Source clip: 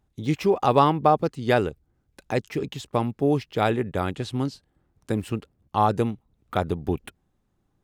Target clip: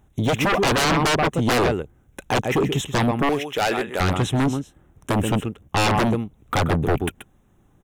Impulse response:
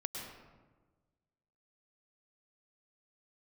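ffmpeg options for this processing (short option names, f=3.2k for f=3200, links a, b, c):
-filter_complex "[0:a]asuperstop=centerf=4600:order=4:qfactor=2.2,aecho=1:1:131:0.251,asoftclip=type=hard:threshold=-16dB,asettb=1/sr,asplit=3[a][b][c];[a]atrim=end=3.294[d];[b]atrim=start=3.29:end=4,asetpts=PTS-STARTPTS,afade=t=in:d=0.004:c=qsin,afade=t=out:st=0.706:d=0.004:c=qsin,highpass=f=1.3k:p=1[e];[c]atrim=start=3.996[f];[d][e]acrossfade=d=0.004:c1=hsin:c2=qsin[g];[g][f]acrossfade=d=0.004:c1=qsin:c2=hsin,aeval=exprs='0.211*sin(PI/2*3.16*val(0)/0.211)':c=same,volume=-1.5dB"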